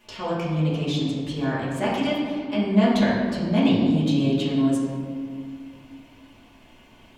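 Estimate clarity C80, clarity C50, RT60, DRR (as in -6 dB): 2.0 dB, 0.0 dB, 2.1 s, -9.5 dB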